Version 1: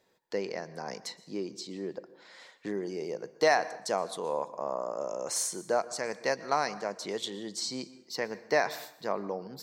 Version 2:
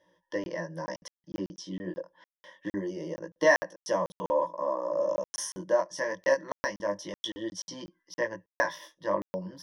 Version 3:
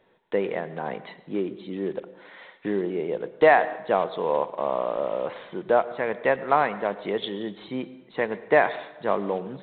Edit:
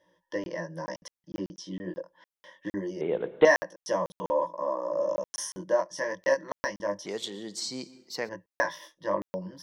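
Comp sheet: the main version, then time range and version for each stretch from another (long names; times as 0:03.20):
2
0:03.01–0:03.45: punch in from 3
0:07.06–0:08.29: punch in from 1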